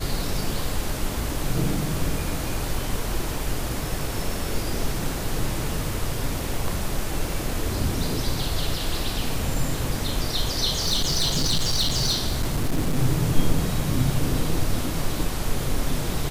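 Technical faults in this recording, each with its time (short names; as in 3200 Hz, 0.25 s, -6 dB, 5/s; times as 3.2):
10.79–12.99 clipped -17.5 dBFS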